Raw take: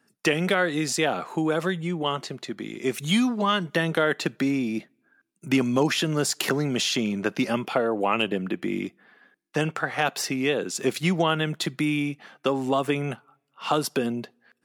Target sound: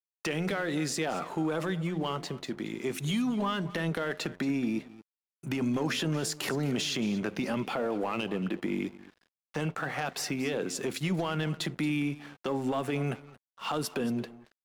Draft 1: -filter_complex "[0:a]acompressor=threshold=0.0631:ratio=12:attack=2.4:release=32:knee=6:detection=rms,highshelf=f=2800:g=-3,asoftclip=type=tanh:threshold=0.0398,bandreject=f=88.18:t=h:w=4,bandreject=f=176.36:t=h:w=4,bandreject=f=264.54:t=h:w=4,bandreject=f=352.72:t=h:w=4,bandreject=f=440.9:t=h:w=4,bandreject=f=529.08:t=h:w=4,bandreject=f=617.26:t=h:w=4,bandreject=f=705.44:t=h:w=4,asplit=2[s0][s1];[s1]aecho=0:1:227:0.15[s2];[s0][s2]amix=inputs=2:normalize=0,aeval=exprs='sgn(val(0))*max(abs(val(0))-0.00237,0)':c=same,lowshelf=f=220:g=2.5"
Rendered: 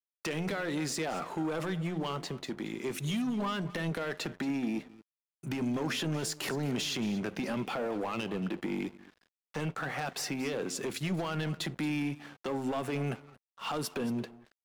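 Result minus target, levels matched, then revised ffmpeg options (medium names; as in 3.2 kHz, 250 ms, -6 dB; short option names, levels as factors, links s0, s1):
saturation: distortion +9 dB
-filter_complex "[0:a]acompressor=threshold=0.0631:ratio=12:attack=2.4:release=32:knee=6:detection=rms,highshelf=f=2800:g=-3,asoftclip=type=tanh:threshold=0.0891,bandreject=f=88.18:t=h:w=4,bandreject=f=176.36:t=h:w=4,bandreject=f=264.54:t=h:w=4,bandreject=f=352.72:t=h:w=4,bandreject=f=440.9:t=h:w=4,bandreject=f=529.08:t=h:w=4,bandreject=f=617.26:t=h:w=4,bandreject=f=705.44:t=h:w=4,asplit=2[s0][s1];[s1]aecho=0:1:227:0.15[s2];[s0][s2]amix=inputs=2:normalize=0,aeval=exprs='sgn(val(0))*max(abs(val(0))-0.00237,0)':c=same,lowshelf=f=220:g=2.5"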